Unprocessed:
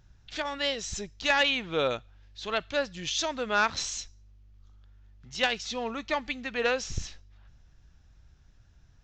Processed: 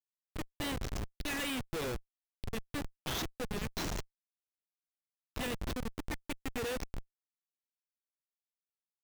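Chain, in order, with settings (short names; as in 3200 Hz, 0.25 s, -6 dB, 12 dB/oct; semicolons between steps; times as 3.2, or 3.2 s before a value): Chebyshev band-stop 500–1800 Hz, order 4; de-hum 213.2 Hz, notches 25; Schmitt trigger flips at -30 dBFS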